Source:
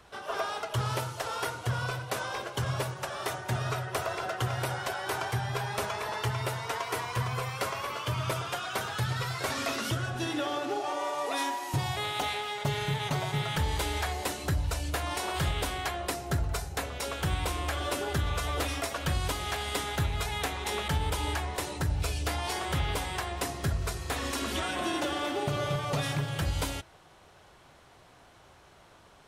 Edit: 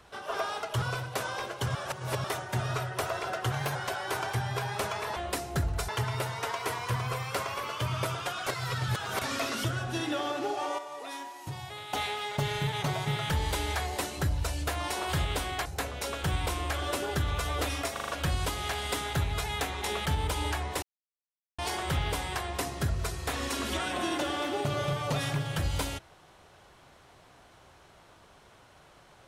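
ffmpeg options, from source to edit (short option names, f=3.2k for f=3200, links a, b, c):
-filter_complex "[0:a]asplit=19[a][b][c][d][e][f][g][h][i][j][k][l][m][n][o][p][q][r][s];[a]atrim=end=0.822[t];[b]atrim=start=1.778:end=2.712[u];[c]atrim=start=2.708:end=3.202,asetpts=PTS-STARTPTS,areverse[v];[d]atrim=start=3.198:end=4.484[w];[e]atrim=start=4.48:end=4.74,asetpts=PTS-STARTPTS,asetrate=48951,aresample=44100[x];[f]atrim=start=4.736:end=6.152[y];[g]atrim=start=15.918:end=16.642[z];[h]atrim=start=6.148:end=8.732[aa];[i]atrim=start=8.728:end=9.482,asetpts=PTS-STARTPTS,areverse[ab];[j]atrim=start=9.478:end=11.052[ac];[k]atrim=start=11.048:end=12.202,asetpts=PTS-STARTPTS,volume=-9dB[ad];[l]atrim=start=12.198:end=15.922[ae];[m]atrim=start=16.638:end=18.952[af];[n]atrim=start=18.908:end=18.952[ag];[o]atrim=start=18.908:end=18.952[ah];[p]atrim=start=18.908:end=18.952[ai];[q]atrim=start=18.908:end=21.65,asetpts=PTS-STARTPTS,afade=t=out:st=2.738:d=0.004:c=hsin[aj];[r]atrim=start=21.65:end=22.41,asetpts=PTS-STARTPTS,volume=0[ak];[s]atrim=start=22.41,asetpts=PTS-STARTPTS,afade=t=in:d=0.004:c=hsin[al];[t][u]acrossfade=d=0.004:c1=hsin:c2=hsin[am];[am][v]acrossfade=d=0.004:c1=hsin:c2=hsin[an];[an][w]acrossfade=d=0.004:c1=hsin:c2=hsin[ao];[ao][x]acrossfade=d=0.004:c1=hsin:c2=hsin[ap];[ap][y]acrossfade=d=0.004:c1=hsin:c2=hsin[aq];[aq][z]acrossfade=d=0.004:c1=hsin:c2=hsin[ar];[ar][aa]acrossfade=d=0.004:c1=hsin:c2=hsin[as];[as][ab]acrossfade=d=0.004:c1=hsin:c2=hsin[at];[at][ac]acrossfade=d=0.004:c1=hsin:c2=hsin[au];[au][ad]acrossfade=d=0.004:c1=hsin:c2=hsin[av];[av][ae]acrossfade=d=0.004:c1=hsin:c2=hsin[aw];[aw][af]acrossfade=d=0.004:c1=hsin:c2=hsin[ax];[ax][ag]acrossfade=d=0.004:c1=hsin:c2=hsin[ay];[ay][ah]acrossfade=d=0.004:c1=hsin:c2=hsin[az];[az][ai]acrossfade=d=0.004:c1=hsin:c2=hsin[ba];[aj][ak][al]concat=n=3:v=0:a=1[bb];[ba][bb]acrossfade=d=0.004:c1=hsin:c2=hsin"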